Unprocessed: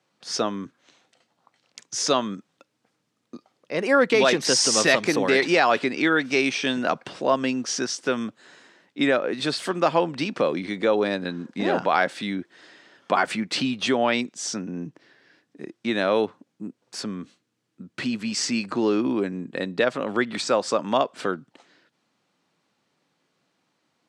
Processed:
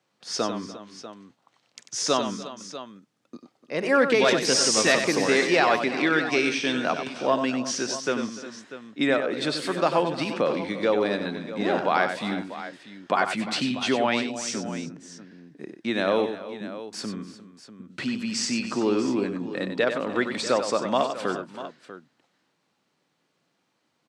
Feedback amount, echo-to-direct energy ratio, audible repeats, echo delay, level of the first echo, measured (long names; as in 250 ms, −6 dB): repeats not evenly spaced, −6.5 dB, 4, 94 ms, −8.0 dB